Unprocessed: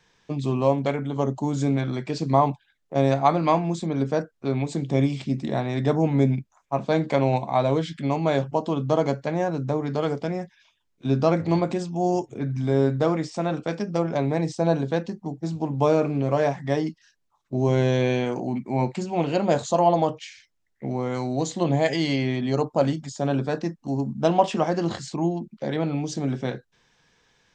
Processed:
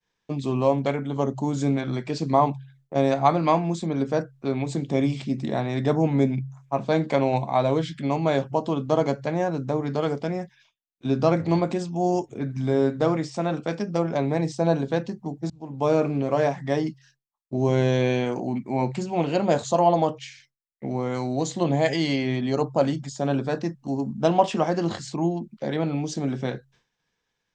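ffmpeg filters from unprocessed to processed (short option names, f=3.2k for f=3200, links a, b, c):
-filter_complex "[0:a]asplit=2[a][b];[a]atrim=end=15.5,asetpts=PTS-STARTPTS,afade=t=out:st=15.496:d=0.004:c=hsin[c];[b]atrim=start=15.5,asetpts=PTS-STARTPTS,afade=t=in:d=0.47[d];[c][d]concat=n=2:v=0:a=1,bandreject=f=67.12:t=h:w=4,bandreject=f=134.24:t=h:w=4,agate=range=-33dB:threshold=-53dB:ratio=3:detection=peak"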